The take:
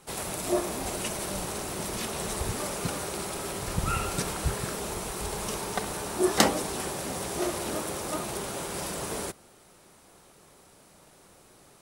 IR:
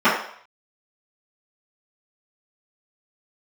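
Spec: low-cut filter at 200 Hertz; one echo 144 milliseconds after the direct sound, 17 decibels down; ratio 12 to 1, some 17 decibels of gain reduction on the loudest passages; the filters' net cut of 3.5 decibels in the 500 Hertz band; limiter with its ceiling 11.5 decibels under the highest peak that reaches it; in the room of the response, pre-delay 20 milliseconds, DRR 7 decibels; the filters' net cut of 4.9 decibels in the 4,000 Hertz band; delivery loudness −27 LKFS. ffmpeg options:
-filter_complex "[0:a]highpass=200,equalizer=frequency=500:width_type=o:gain=-4.5,equalizer=frequency=4000:width_type=o:gain=-6.5,acompressor=threshold=-36dB:ratio=12,alimiter=level_in=9dB:limit=-24dB:level=0:latency=1,volume=-9dB,aecho=1:1:144:0.141,asplit=2[link_01][link_02];[1:a]atrim=start_sample=2205,adelay=20[link_03];[link_02][link_03]afir=irnorm=-1:irlink=0,volume=-31dB[link_04];[link_01][link_04]amix=inputs=2:normalize=0,volume=14.5dB"

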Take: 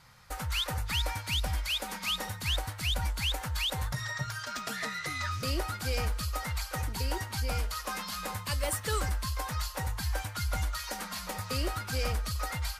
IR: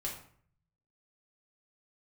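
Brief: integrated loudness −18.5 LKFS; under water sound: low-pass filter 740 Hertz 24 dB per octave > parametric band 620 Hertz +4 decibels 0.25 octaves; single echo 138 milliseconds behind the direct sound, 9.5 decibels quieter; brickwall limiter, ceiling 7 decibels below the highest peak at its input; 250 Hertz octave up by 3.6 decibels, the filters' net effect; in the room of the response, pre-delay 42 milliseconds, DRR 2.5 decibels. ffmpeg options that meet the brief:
-filter_complex "[0:a]equalizer=frequency=250:width_type=o:gain=5,alimiter=level_in=4dB:limit=-24dB:level=0:latency=1,volume=-4dB,aecho=1:1:138:0.335,asplit=2[link_01][link_02];[1:a]atrim=start_sample=2205,adelay=42[link_03];[link_02][link_03]afir=irnorm=-1:irlink=0,volume=-3.5dB[link_04];[link_01][link_04]amix=inputs=2:normalize=0,lowpass=frequency=740:width=0.5412,lowpass=frequency=740:width=1.3066,equalizer=frequency=620:width_type=o:width=0.25:gain=4,volume=19dB"

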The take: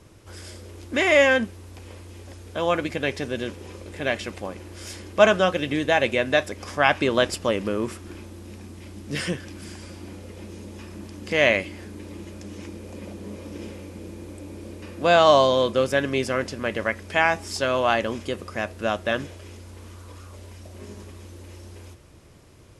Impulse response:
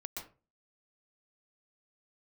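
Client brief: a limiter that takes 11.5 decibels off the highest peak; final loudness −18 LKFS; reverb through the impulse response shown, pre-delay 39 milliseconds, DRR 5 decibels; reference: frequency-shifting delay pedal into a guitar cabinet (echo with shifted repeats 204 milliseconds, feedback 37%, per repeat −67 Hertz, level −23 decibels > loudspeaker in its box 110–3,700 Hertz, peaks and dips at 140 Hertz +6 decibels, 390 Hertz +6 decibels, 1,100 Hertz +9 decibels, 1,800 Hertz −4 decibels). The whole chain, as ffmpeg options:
-filter_complex "[0:a]alimiter=limit=-13.5dB:level=0:latency=1,asplit=2[link_01][link_02];[1:a]atrim=start_sample=2205,adelay=39[link_03];[link_02][link_03]afir=irnorm=-1:irlink=0,volume=-3.5dB[link_04];[link_01][link_04]amix=inputs=2:normalize=0,asplit=3[link_05][link_06][link_07];[link_06]adelay=204,afreqshift=-67,volume=-23dB[link_08];[link_07]adelay=408,afreqshift=-134,volume=-31.6dB[link_09];[link_05][link_08][link_09]amix=inputs=3:normalize=0,highpass=110,equalizer=frequency=140:width_type=q:width=4:gain=6,equalizer=frequency=390:width_type=q:width=4:gain=6,equalizer=frequency=1100:width_type=q:width=4:gain=9,equalizer=frequency=1800:width_type=q:width=4:gain=-4,lowpass=frequency=3700:width=0.5412,lowpass=frequency=3700:width=1.3066,volume=6.5dB"

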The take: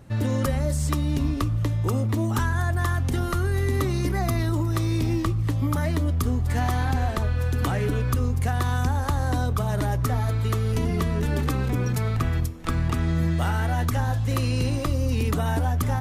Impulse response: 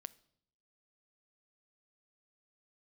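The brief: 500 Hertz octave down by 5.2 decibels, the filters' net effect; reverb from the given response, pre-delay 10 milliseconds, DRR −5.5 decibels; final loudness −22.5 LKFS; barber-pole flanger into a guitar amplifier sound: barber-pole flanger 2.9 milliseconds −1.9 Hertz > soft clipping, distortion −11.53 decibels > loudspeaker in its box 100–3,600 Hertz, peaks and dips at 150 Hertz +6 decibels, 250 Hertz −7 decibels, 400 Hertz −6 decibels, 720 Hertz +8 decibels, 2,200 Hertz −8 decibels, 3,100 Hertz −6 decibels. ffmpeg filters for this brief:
-filter_complex "[0:a]equalizer=frequency=500:width_type=o:gain=-8,asplit=2[link_01][link_02];[1:a]atrim=start_sample=2205,adelay=10[link_03];[link_02][link_03]afir=irnorm=-1:irlink=0,volume=11dB[link_04];[link_01][link_04]amix=inputs=2:normalize=0,asplit=2[link_05][link_06];[link_06]adelay=2.9,afreqshift=-1.9[link_07];[link_05][link_07]amix=inputs=2:normalize=1,asoftclip=threshold=-20.5dB,highpass=100,equalizer=frequency=150:width_type=q:width=4:gain=6,equalizer=frequency=250:width_type=q:width=4:gain=-7,equalizer=frequency=400:width_type=q:width=4:gain=-6,equalizer=frequency=720:width_type=q:width=4:gain=8,equalizer=frequency=2200:width_type=q:width=4:gain=-8,equalizer=frequency=3100:width_type=q:width=4:gain=-6,lowpass=frequency=3600:width=0.5412,lowpass=frequency=3600:width=1.3066,volume=5dB"

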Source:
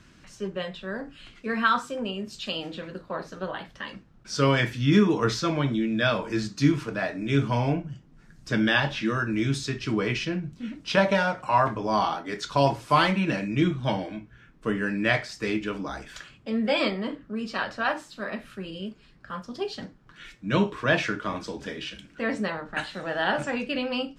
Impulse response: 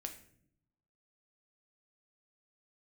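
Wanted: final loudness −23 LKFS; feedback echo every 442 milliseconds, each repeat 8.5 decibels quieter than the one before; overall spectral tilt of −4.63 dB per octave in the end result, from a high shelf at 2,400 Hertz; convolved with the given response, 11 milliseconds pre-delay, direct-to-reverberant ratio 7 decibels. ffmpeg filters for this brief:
-filter_complex "[0:a]highshelf=frequency=2400:gain=6,aecho=1:1:442|884|1326|1768:0.376|0.143|0.0543|0.0206,asplit=2[link_01][link_02];[1:a]atrim=start_sample=2205,adelay=11[link_03];[link_02][link_03]afir=irnorm=-1:irlink=0,volume=-4dB[link_04];[link_01][link_04]amix=inputs=2:normalize=0,volume=1.5dB"

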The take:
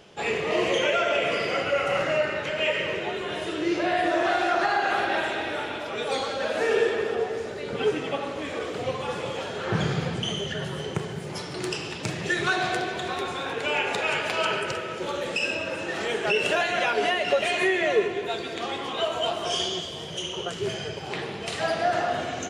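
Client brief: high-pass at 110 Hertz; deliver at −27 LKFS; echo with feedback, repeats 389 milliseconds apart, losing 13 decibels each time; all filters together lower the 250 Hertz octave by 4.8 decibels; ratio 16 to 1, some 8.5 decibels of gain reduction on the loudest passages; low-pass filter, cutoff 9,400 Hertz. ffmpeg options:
ffmpeg -i in.wav -af "highpass=110,lowpass=9400,equalizer=frequency=250:width_type=o:gain=-8,acompressor=threshold=-28dB:ratio=16,aecho=1:1:389|778|1167:0.224|0.0493|0.0108,volume=5dB" out.wav

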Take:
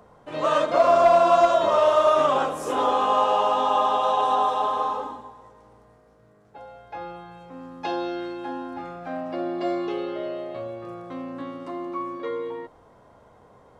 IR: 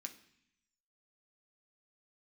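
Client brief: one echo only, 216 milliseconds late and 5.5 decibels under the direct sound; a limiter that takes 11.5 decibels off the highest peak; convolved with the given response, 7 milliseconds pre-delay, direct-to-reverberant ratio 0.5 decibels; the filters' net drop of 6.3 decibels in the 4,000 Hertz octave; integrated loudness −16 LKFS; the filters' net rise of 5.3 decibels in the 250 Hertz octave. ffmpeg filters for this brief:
-filter_complex "[0:a]equalizer=frequency=250:width_type=o:gain=7.5,equalizer=frequency=4000:width_type=o:gain=-9,alimiter=limit=-19dB:level=0:latency=1,aecho=1:1:216:0.531,asplit=2[link_01][link_02];[1:a]atrim=start_sample=2205,adelay=7[link_03];[link_02][link_03]afir=irnorm=-1:irlink=0,volume=4dB[link_04];[link_01][link_04]amix=inputs=2:normalize=0,volume=10dB"

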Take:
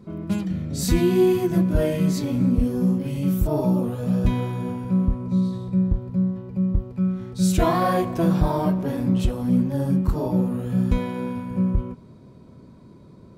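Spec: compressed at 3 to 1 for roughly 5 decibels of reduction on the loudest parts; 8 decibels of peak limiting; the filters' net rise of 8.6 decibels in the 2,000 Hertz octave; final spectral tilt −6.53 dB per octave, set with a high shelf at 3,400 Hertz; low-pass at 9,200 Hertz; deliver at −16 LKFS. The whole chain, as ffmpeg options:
ffmpeg -i in.wav -af "lowpass=9200,equalizer=frequency=2000:width_type=o:gain=8.5,highshelf=frequency=3400:gain=8.5,acompressor=threshold=-21dB:ratio=3,volume=11.5dB,alimiter=limit=-7.5dB:level=0:latency=1" out.wav

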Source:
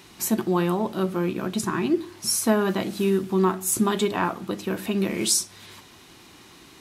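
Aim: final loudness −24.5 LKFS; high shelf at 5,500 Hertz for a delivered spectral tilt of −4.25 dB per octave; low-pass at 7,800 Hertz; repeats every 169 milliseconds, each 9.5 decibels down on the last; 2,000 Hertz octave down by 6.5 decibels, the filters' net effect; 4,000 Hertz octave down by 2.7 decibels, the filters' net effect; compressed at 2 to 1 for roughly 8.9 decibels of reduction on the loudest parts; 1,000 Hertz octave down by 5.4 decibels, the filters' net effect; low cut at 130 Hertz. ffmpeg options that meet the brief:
ffmpeg -i in.wav -af "highpass=130,lowpass=7800,equalizer=frequency=1000:width_type=o:gain=-5,equalizer=frequency=2000:width_type=o:gain=-6.5,equalizer=frequency=4000:width_type=o:gain=-5.5,highshelf=frequency=5500:gain=6.5,acompressor=threshold=-34dB:ratio=2,aecho=1:1:169|338|507|676:0.335|0.111|0.0365|0.012,volume=8dB" out.wav

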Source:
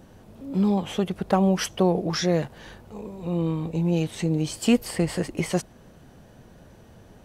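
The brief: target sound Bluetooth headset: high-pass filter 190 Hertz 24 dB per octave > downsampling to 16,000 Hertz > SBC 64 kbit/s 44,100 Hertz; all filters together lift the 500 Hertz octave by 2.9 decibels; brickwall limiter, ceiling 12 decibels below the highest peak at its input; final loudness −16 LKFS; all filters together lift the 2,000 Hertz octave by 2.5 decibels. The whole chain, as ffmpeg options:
ffmpeg -i in.wav -af "equalizer=frequency=500:width_type=o:gain=3.5,equalizer=frequency=2000:width_type=o:gain=3,alimiter=limit=-17.5dB:level=0:latency=1,highpass=frequency=190:width=0.5412,highpass=frequency=190:width=1.3066,aresample=16000,aresample=44100,volume=13.5dB" -ar 44100 -c:a sbc -b:a 64k out.sbc

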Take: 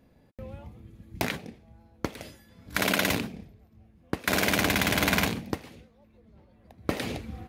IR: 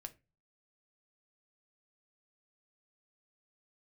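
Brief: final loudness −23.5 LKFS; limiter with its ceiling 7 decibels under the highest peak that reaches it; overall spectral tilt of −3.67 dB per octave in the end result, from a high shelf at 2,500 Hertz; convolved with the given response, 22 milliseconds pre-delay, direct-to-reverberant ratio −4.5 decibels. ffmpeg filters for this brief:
-filter_complex "[0:a]highshelf=frequency=2500:gain=3,alimiter=limit=-15.5dB:level=0:latency=1,asplit=2[link_01][link_02];[1:a]atrim=start_sample=2205,adelay=22[link_03];[link_02][link_03]afir=irnorm=-1:irlink=0,volume=9.5dB[link_04];[link_01][link_04]amix=inputs=2:normalize=0,volume=1dB"

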